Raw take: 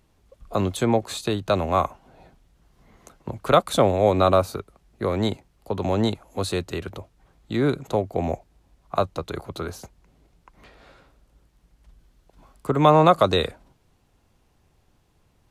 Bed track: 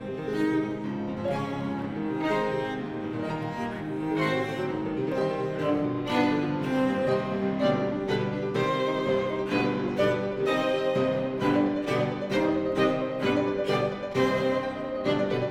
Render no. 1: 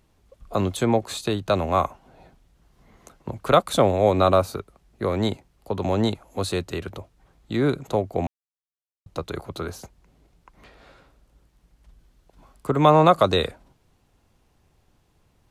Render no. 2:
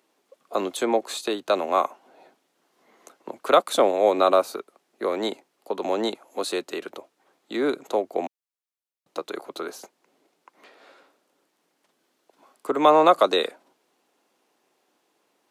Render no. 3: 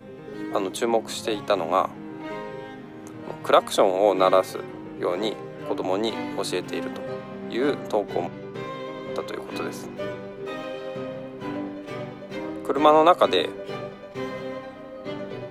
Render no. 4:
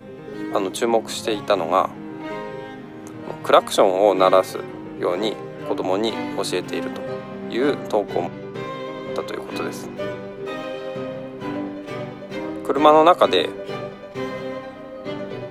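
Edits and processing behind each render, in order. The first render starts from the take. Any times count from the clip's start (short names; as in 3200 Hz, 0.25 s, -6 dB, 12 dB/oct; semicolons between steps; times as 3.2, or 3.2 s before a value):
8.27–9.06 mute
HPF 290 Hz 24 dB/oct
add bed track -7.5 dB
gain +3.5 dB; limiter -1 dBFS, peak gain reduction 1 dB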